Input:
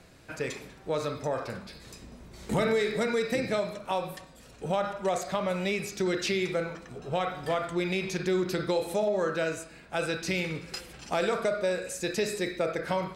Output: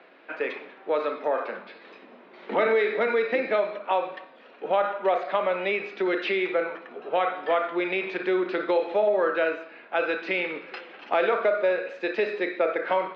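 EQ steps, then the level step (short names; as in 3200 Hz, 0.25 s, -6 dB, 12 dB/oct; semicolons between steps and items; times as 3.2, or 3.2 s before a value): Bessel high-pass 430 Hz, order 8; LPF 3200 Hz 24 dB/oct; air absorption 150 m; +7.5 dB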